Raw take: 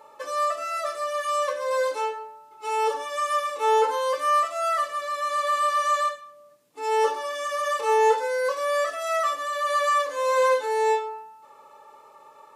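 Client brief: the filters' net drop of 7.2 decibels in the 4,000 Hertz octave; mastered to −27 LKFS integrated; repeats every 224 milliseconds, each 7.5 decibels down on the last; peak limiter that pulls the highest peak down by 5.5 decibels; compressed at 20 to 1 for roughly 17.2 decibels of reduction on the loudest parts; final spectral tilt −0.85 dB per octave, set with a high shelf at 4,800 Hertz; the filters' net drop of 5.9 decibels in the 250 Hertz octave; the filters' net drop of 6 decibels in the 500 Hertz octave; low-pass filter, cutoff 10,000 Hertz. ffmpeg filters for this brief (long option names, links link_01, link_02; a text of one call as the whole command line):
ffmpeg -i in.wav -af "lowpass=10000,equalizer=frequency=250:width_type=o:gain=-5,equalizer=frequency=500:width_type=o:gain=-5.5,equalizer=frequency=4000:width_type=o:gain=-6,highshelf=frequency=4800:gain=-8,acompressor=threshold=-37dB:ratio=20,alimiter=level_in=10.5dB:limit=-24dB:level=0:latency=1,volume=-10.5dB,aecho=1:1:224|448|672|896|1120:0.422|0.177|0.0744|0.0312|0.0131,volume=14.5dB" out.wav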